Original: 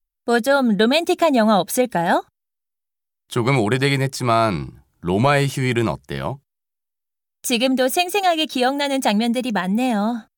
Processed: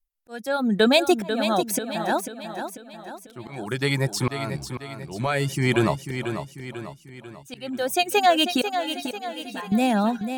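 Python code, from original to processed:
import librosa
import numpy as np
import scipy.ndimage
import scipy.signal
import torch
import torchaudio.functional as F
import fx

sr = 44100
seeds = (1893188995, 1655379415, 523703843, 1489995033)

y = fx.dereverb_blind(x, sr, rt60_s=0.53)
y = fx.auto_swell(y, sr, attack_ms=662.0)
y = fx.comb_fb(y, sr, f0_hz=95.0, decay_s=0.23, harmonics='odd', damping=0.0, mix_pct=90, at=(8.69, 9.72))
y = fx.echo_feedback(y, sr, ms=493, feedback_pct=48, wet_db=-8.5)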